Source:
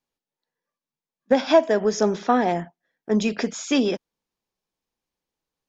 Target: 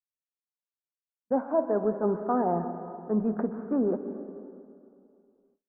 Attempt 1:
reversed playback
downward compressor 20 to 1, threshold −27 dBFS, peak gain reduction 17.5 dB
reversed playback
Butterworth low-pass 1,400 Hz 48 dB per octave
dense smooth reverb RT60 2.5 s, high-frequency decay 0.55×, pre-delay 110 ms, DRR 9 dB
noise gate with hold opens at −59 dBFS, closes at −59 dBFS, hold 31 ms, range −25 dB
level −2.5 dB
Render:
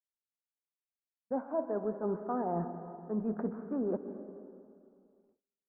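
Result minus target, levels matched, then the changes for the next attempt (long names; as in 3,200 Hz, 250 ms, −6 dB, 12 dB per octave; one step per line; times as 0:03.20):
downward compressor: peak gain reduction +8 dB
change: downward compressor 20 to 1, threshold −18.5 dBFS, peak gain reduction 9 dB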